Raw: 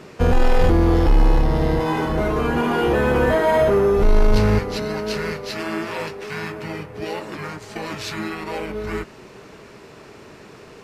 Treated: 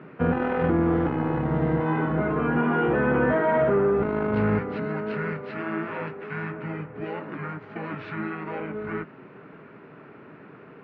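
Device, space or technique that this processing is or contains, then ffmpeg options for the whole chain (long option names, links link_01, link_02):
bass cabinet: -af "highpass=frequency=83:width=0.5412,highpass=frequency=83:width=1.3066,equalizer=frequency=91:width_type=q:width=4:gain=-7,equalizer=frequency=160:width_type=q:width=4:gain=7,equalizer=frequency=270:width_type=q:width=4:gain=7,equalizer=frequency=1400:width_type=q:width=4:gain=6,lowpass=frequency=2400:width=0.5412,lowpass=frequency=2400:width=1.3066,volume=-5.5dB"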